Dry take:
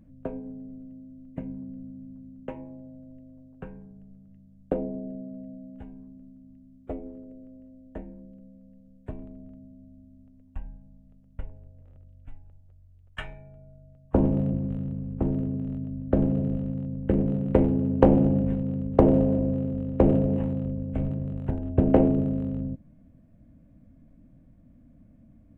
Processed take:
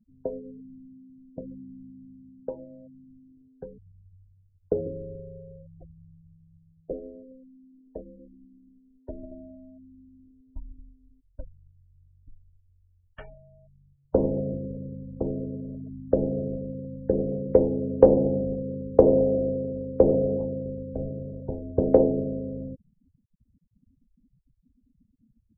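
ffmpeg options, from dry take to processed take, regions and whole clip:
-filter_complex "[0:a]asettb=1/sr,asplit=3[a][b][c];[a]atrim=end=3.784[d];[b]atrim=start=3.78:end=6.93,asetpts=PTS-STARTPTS,afade=t=in:d=0.004:c=qsin,afade=t=out:st=3.146:d=0.004:c=qsin,asplit=5[e][f][g][h][i];[f]adelay=143,afreqshift=-140,volume=-10.5dB[j];[g]adelay=286,afreqshift=-280,volume=-19.1dB[k];[h]adelay=429,afreqshift=-420,volume=-27.8dB[l];[i]adelay=572,afreqshift=-560,volume=-36.4dB[m];[e][j][k][l][m]amix=inputs=5:normalize=0,atrim=end_sample=138915,afreqshift=-98[n];[c]atrim=start=6.926[o];[d][n]acrossfade=d=0.004:c1=hsin:c2=qsin[p];[p][o]acrossfade=d=0.004:c1=qsin:c2=hsin,asettb=1/sr,asplit=3[q][r][s];[q]atrim=end=8.194[t];[r]atrim=start=8.19:end=11.43,asetpts=PTS-STARTPTS,afade=t=in:d=0.004:c=qsin,afade=t=out:st=3.236:d=0.004:c=qsin,aecho=1:1:3.3:0.79,atrim=end_sample=142884,aecho=1:1:143|226:0.299|0.251,atrim=end_sample=142884[u];[s]atrim=start=11.426[v];[t][u]acrossfade=d=0.004:c1=hsin:c2=qsin[w];[w][v]acrossfade=d=0.004:c1=qsin:c2=hsin,afftfilt=real='re*gte(hypot(re,im),0.0158)':imag='im*gte(hypot(re,im),0.0158)':win_size=1024:overlap=0.75,lowpass=f=1.3k:p=1,equalizer=f=490:t=o:w=0.81:g=15,volume=-7dB"

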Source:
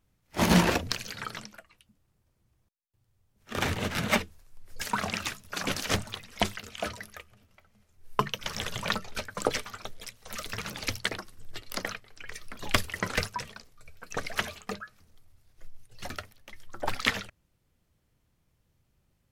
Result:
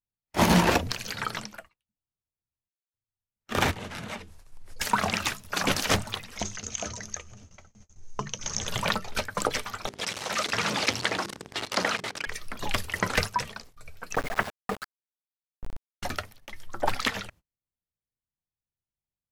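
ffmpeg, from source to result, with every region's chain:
-filter_complex "[0:a]asettb=1/sr,asplit=3[a][b][c];[a]atrim=end=3.714[d];[b]atrim=start=3.71:end=4.81,asetpts=PTS-STARTPTS,afade=t=in:d=0.004:c=qsin,afade=t=out:st=1.096:d=0.004:c=qsin,lowpass=f=12k:w=0.5412,lowpass=f=12k:w=1.3066,acompressor=threshold=-41dB:ratio=5:attack=3.2:release=140:knee=1:detection=peak[e];[c]atrim=start=4.806[f];[d][e]acrossfade=d=0.004:c1=hsin:c2=qsin[g];[g][f]acrossfade=d=0.004:c1=qsin:c2=hsin,asettb=1/sr,asplit=3[h][i][j];[h]atrim=end=6.384[k];[i]atrim=start=6.38:end=8.68,asetpts=PTS-STARTPTS,afade=t=in:d=0.004:c=qsin,afade=t=out:st=2.296:d=0.004:c=qsin,lowshelf=f=460:g=8.5,acompressor=threshold=-47dB:ratio=2:attack=3.2:release=140:knee=1:detection=peak,lowpass=f=6.4k:t=q:w=14[l];[j]atrim=start=8.676[m];[k][l]acrossfade=d=0.004:c1=hsin:c2=qsin[n];[n][m]acrossfade=d=0.004:c1=qsin:c2=hsin,asettb=1/sr,asplit=3[o][p][q];[o]atrim=end=9.874[r];[p]atrim=start=9.87:end=12.27,asetpts=PTS-STARTPTS,afade=t=in:d=0.004:c=qsin,afade=t=out:st=2.396:d=0.004:c=qsin,aeval=exprs='val(0)+0.5*0.0299*sgn(val(0))':c=same,highpass=170,lowpass=6.9k,bandreject=f=50:t=h:w=6,bandreject=f=100:t=h:w=6,bandreject=f=150:t=h:w=6,bandreject=f=200:t=h:w=6,bandreject=f=250:t=h:w=6,bandreject=f=300:t=h:w=6,bandreject=f=350:t=h:w=6,bandreject=f=400:t=h:w=6,bandreject=f=450:t=h:w=6[s];[q]atrim=start=12.266[t];[r][s]acrossfade=d=0.004:c1=hsin:c2=qsin[u];[u][t]acrossfade=d=0.004:c1=qsin:c2=hsin,asettb=1/sr,asplit=3[v][w][x];[v]atrim=end=14.154[y];[w]atrim=start=14.15:end=16.03,asetpts=PTS-STARTPTS,afade=t=in:d=0.004:c=qsin,afade=t=out:st=1.876:d=0.004:c=qsin,lowpass=f=2k:w=0.5412,lowpass=f=2k:w=1.3066,bandreject=f=60:t=h:w=6,bandreject=f=120:t=h:w=6,bandreject=f=180:t=h:w=6,bandreject=f=240:t=h:w=6,bandreject=f=300:t=h:w=6,bandreject=f=360:t=h:w=6,bandreject=f=420:t=h:w=6,aeval=exprs='val(0)*gte(abs(val(0)),0.0141)':c=same[z];[x]atrim=start=16.026[aa];[y][z]acrossfade=d=0.004:c1=hsin:c2=qsin[ab];[ab][aa]acrossfade=d=0.004:c1=qsin:c2=hsin,agate=range=-32dB:threshold=-54dB:ratio=16:detection=peak,equalizer=f=870:t=o:w=0.72:g=3.5,alimiter=limit=-14.5dB:level=0:latency=1:release=201,volume=5dB"

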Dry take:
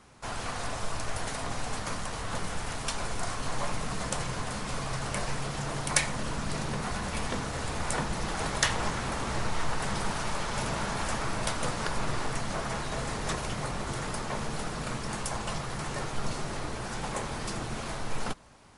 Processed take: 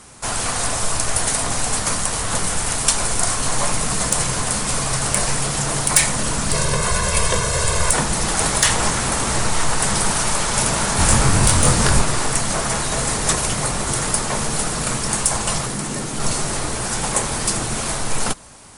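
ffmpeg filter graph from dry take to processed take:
-filter_complex "[0:a]asettb=1/sr,asplit=3[a][b][c];[a]atrim=end=6.524[d];[b]atrim=start=6.52:end=7.92,asetpts=PTS-STARTPTS,afade=t=in:d=0.004:c=qsin,afade=t=out:st=1.396:d=0.004:c=qsin,highshelf=f=8.3k:g=-4,aecho=1:1:1.9:0.85,atrim=end_sample=61740[e];[c]atrim=start=7.916[f];[d][e]acrossfade=d=0.004:c1=hsin:c2=qsin[g];[g][f]acrossfade=d=0.004:c1=qsin:c2=hsin,asettb=1/sr,asplit=3[h][i][j];[h]atrim=end=10.974[k];[i]atrim=start=10.97:end=12.02,asetpts=PTS-STARTPTS,afade=t=in:d=0.004:c=qsin,afade=t=out:st=1.046:d=0.004:c=qsin,equalizer=f=79:w=0.43:g=10.5,asplit=2[l][m];[m]adelay=22,volume=-2.5dB[n];[l][n]amix=inputs=2:normalize=0,atrim=end_sample=46305[o];[j]atrim=start=12.016[p];[k][o]acrossfade=d=0.004:c1=hsin:c2=qsin[q];[q][p]acrossfade=d=0.004:c1=qsin:c2=hsin,asettb=1/sr,asplit=3[r][s][t];[r]atrim=end=15.664[u];[s]atrim=start=15.66:end=16.2,asetpts=PTS-STARTPTS,afade=t=in:d=0.004:c=qsin,afade=t=out:st=0.536:d=0.004:c=qsin,equalizer=f=230:w=0.98:g=13.5,acrossover=split=300|1500|3300[v][w][x][y];[v]acompressor=threshold=-40dB:ratio=3[z];[w]acompressor=threshold=-43dB:ratio=3[aa];[x]acompressor=threshold=-50dB:ratio=3[ab];[y]acompressor=threshold=-49dB:ratio=3[ac];[z][aa][ab][ac]amix=inputs=4:normalize=0[ad];[t]atrim=start=16.196[ae];[u][ad]acrossfade=d=0.004:c1=hsin:c2=qsin[af];[af][ae]acrossfade=d=0.004:c1=qsin:c2=hsin,equalizer=f=9.2k:w=0.84:g=14,acontrast=65,alimiter=level_in=4.5dB:limit=-1dB:release=50:level=0:latency=1,volume=-1dB"

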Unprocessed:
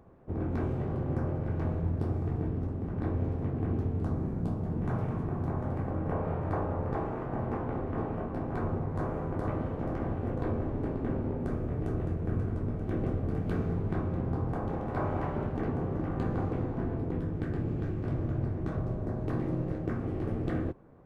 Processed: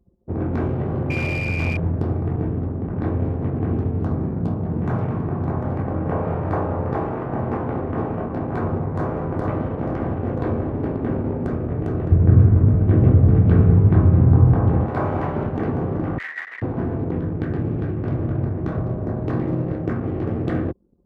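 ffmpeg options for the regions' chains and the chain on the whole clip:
-filter_complex "[0:a]asettb=1/sr,asplit=3[a][b][c];[a]atrim=end=1.104[d];[b]atrim=start=1.1:end=1.77,asetpts=PTS-STARTPTS,afade=t=in:d=0.004:c=qsin,afade=t=out:st=0.666:d=0.004:c=qsin,asubboost=boost=5.5:cutoff=150,aeval=exprs='val(0)+0.02*sin(2*PI*2400*n/s)':c=same,aeval=exprs='clip(val(0),-1,0.0251)':c=same[e];[c]atrim=start=1.766[f];[d][e]acrossfade=d=0.004:c1=hsin:c2=qsin[g];[g][f]acrossfade=d=0.004:c1=qsin:c2=hsin,asettb=1/sr,asplit=3[h][i][j];[h]atrim=end=12.114[k];[i]atrim=start=12.11:end=14.86,asetpts=PTS-STARTPTS,afade=t=in:d=0.004:c=qsin,afade=t=out:st=2.746:d=0.004:c=qsin,lowpass=3.1k,equalizer=f=87:w=0.74:g=14,asplit=2[l][m];[m]adelay=16,volume=-11.5dB[n];[l][n]amix=inputs=2:normalize=0,atrim=end_sample=121275[o];[j]atrim=start=14.856[p];[k][o]acrossfade=d=0.004:c1=hsin:c2=qsin[q];[q][p]acrossfade=d=0.004:c1=qsin:c2=hsin,asettb=1/sr,asplit=3[r][s][t];[r]atrim=end=16.184[u];[s]atrim=start=16.18:end=16.62,asetpts=PTS-STARTPTS,afade=t=in:d=0.004:c=qsin,afade=t=out:st=0.436:d=0.004:c=qsin,aeval=exprs='max(val(0),0)':c=same,highpass=f=1.9k:t=q:w=11,asplit=2[v][w];[w]adelay=13,volume=-7dB[x];[v][x]amix=inputs=2:normalize=0,atrim=end_sample=19404[y];[t]atrim=start=16.616[z];[u][y]acrossfade=d=0.004:c1=hsin:c2=qsin[aa];[aa][z]acrossfade=d=0.004:c1=qsin:c2=hsin,highpass=63,anlmdn=0.0398,volume=9dB"

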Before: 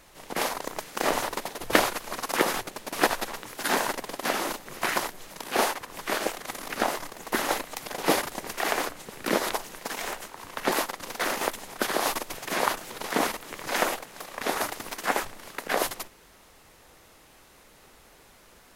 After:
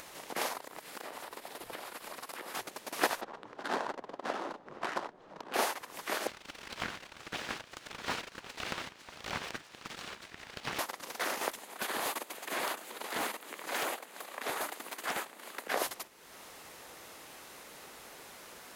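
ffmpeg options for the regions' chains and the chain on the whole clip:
-filter_complex "[0:a]asettb=1/sr,asplit=3[a][b][c];[a]atrim=end=0.574[d];[b]atrim=start=0.57:end=2.55,asetpts=PTS-STARTPTS,afade=t=in:d=0.004:c=qsin,afade=t=out:st=1.976:d=0.004:c=qsin,equalizer=f=6.2k:t=o:w=0.35:g=-5.5,acompressor=threshold=-35dB:ratio=6:attack=3.2:release=140:knee=1:detection=peak[e];[c]atrim=start=2.546[f];[d][e]acrossfade=d=0.004:c1=hsin:c2=qsin[g];[g][f]acrossfade=d=0.004:c1=qsin:c2=hsin,asettb=1/sr,asplit=3[h][i][j];[h]atrim=end=3.214[k];[i]atrim=start=3.21:end=5.54,asetpts=PTS-STARTPTS,afade=t=in:d=0.004:c=qsin,afade=t=out:st=2.326:d=0.004:c=qsin,lowpass=10k,adynamicsmooth=sensitivity=2:basefreq=1.5k,equalizer=f=2.2k:w=1.7:g=-6[l];[j]atrim=start=5.536[m];[k][l]acrossfade=d=0.004:c1=hsin:c2=qsin[n];[n][m]acrossfade=d=0.004:c1=qsin:c2=hsin,asettb=1/sr,asplit=3[o][p][q];[o]atrim=end=6.274[r];[p]atrim=start=6.27:end=10.79,asetpts=PTS-STARTPTS,afade=t=in:d=0.004:c=qsin,afade=t=out:st=4.516:d=0.004:c=qsin,highpass=350,lowpass=3.7k,aeval=exprs='abs(val(0))':c=same[s];[q]atrim=start=10.786[t];[r][s]acrossfade=d=0.004:c1=hsin:c2=qsin[u];[u][t]acrossfade=d=0.004:c1=qsin:c2=hsin,asettb=1/sr,asplit=3[v][w][x];[v]atrim=end=11.594[y];[w]atrim=start=11.59:end=15.68,asetpts=PTS-STARTPTS,afade=t=in:d=0.004:c=qsin,afade=t=out:st=4.086:d=0.004:c=qsin,highpass=f=190:w=0.5412,highpass=f=190:w=1.3066,equalizer=f=5.5k:t=o:w=0.35:g=-7,aeval=exprs='0.0944*(abs(mod(val(0)/0.0944+3,4)-2)-1)':c=same[z];[x]atrim=start=15.676[aa];[y][z]acrossfade=d=0.004:c1=hsin:c2=qsin[ab];[ab][aa]acrossfade=d=0.004:c1=qsin:c2=hsin,highpass=f=280:p=1,acompressor=mode=upward:threshold=-33dB:ratio=2.5,volume=-6dB"

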